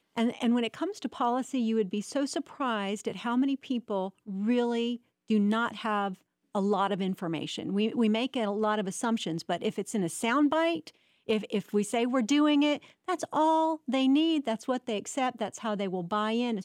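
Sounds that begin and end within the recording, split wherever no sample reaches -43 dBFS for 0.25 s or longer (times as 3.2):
5.3–6.14
6.55–10.89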